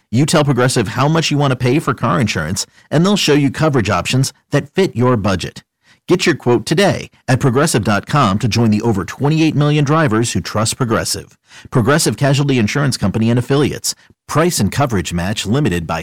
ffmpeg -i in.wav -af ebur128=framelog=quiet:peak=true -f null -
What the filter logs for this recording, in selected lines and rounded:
Integrated loudness:
  I:         -15.0 LUFS
  Threshold: -25.2 LUFS
Loudness range:
  LRA:         1.6 LU
  Threshold: -35.2 LUFS
  LRA low:   -16.1 LUFS
  LRA high:  -14.4 LUFS
True peak:
  Peak:       -5.3 dBFS